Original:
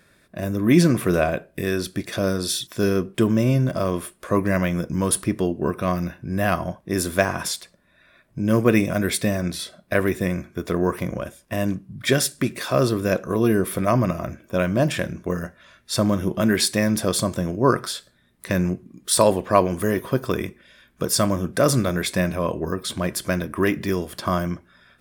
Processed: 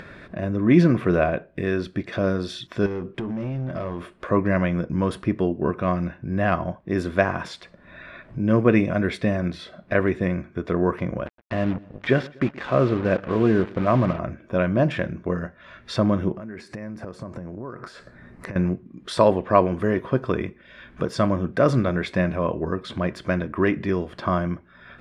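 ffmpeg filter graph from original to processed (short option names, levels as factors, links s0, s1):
-filter_complex "[0:a]asettb=1/sr,asplit=3[s0][s1][s2];[s0]atrim=end=2.864[s3];[s1]atrim=start=2.86:end=4.04,asetpts=PTS-STARTPTS,afade=t=in:d=0.004:c=qsin,afade=t=out:st=1.176:d=0.004:c=qsin,asplit=2[s4][s5];[s5]adelay=23,volume=0.282[s6];[s4][s6]amix=inputs=2:normalize=0,atrim=end_sample=52038,acompressor=threshold=0.0708:ratio=12:attack=3.2:release=140:knee=1:detection=peak,volume=16.8,asoftclip=hard,volume=0.0596[s7];[s2]atrim=start=4.036[s8];[s3][s7]acrossfade=d=0.004:c1=hsin:c2=qsin[s9];[s9][s8]acrossfade=d=0.004:c1=qsin:c2=hsin,asettb=1/sr,asplit=3[s10][s11][s12];[s10]atrim=end=11.264[s13];[s11]atrim=start=11.26:end=14.19,asetpts=PTS-STARTPTS,afade=t=in:d=0.004:c=qsin,afade=t=out:st=2.926:d=0.004:c=qsin,lowpass=3100,acrusher=bits=4:mix=0:aa=0.5,aecho=1:1:122|244|366:0.0794|0.0357|0.0161,atrim=end_sample=129213[s14];[s12]atrim=start=14.186[s15];[s13][s14]acrossfade=d=0.004:c1=hsin:c2=qsin[s16];[s16][s15]acrossfade=d=0.004:c1=qsin:c2=hsin,asettb=1/sr,asplit=3[s17][s18][s19];[s17]atrim=end=16.324[s20];[s18]atrim=start=16.32:end=18.56,asetpts=PTS-STARTPTS,afade=t=in:d=0.004:c=qsin,afade=t=out:st=2.236:d=0.004:c=qsin,acompressor=threshold=0.0224:ratio=10:attack=3.2:release=140:knee=1:detection=peak,equalizer=f=3400:w=2.7:g=-15[s21];[s19]atrim=start=18.556[s22];[s20][s21]acrossfade=d=0.004:c1=hsin:c2=qsin[s23];[s23][s22]acrossfade=d=0.004:c1=qsin:c2=hsin,lowpass=2500,acompressor=mode=upward:threshold=0.0398:ratio=2.5"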